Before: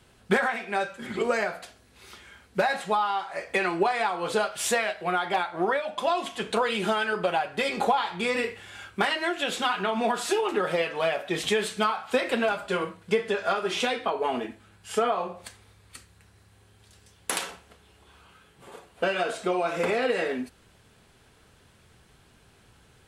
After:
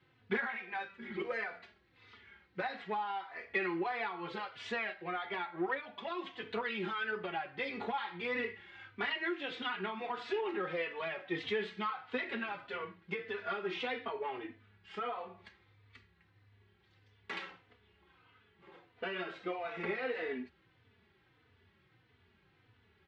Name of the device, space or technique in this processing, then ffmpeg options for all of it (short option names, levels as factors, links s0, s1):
barber-pole flanger into a guitar amplifier: -filter_complex "[0:a]asplit=2[s0][s1];[s1]adelay=3.3,afreqshift=-1.6[s2];[s0][s2]amix=inputs=2:normalize=1,asoftclip=type=tanh:threshold=0.141,highpass=80,equalizer=f=94:t=q:w=4:g=7,equalizer=f=350:t=q:w=4:g=4,equalizer=f=620:t=q:w=4:g=-7,equalizer=f=2000:t=q:w=4:g=7,lowpass=f=3900:w=0.5412,lowpass=f=3900:w=1.3066,volume=0.398"